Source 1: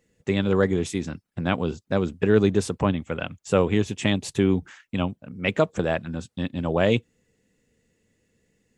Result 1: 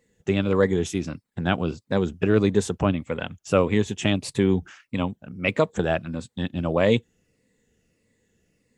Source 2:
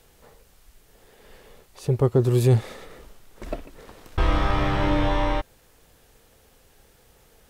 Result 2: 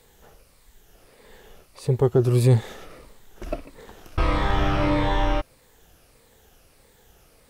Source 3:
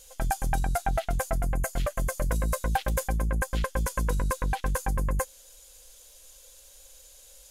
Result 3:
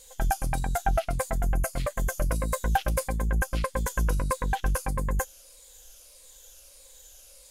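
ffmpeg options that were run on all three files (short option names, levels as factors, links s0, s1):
-af "afftfilt=real='re*pow(10,6/40*sin(2*PI*(0.98*log(max(b,1)*sr/1024/100)/log(2)-(-1.6)*(pts-256)/sr)))':imag='im*pow(10,6/40*sin(2*PI*(0.98*log(max(b,1)*sr/1024/100)/log(2)-(-1.6)*(pts-256)/sr)))':win_size=1024:overlap=0.75"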